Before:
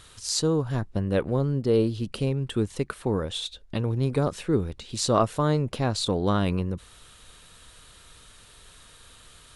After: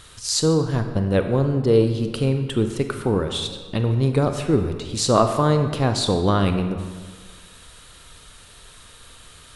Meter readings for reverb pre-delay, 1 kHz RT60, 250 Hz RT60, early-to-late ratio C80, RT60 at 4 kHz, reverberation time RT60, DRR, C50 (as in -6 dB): 28 ms, 1.6 s, 1.6 s, 9.0 dB, 1.0 s, 1.6 s, 6.5 dB, 7.5 dB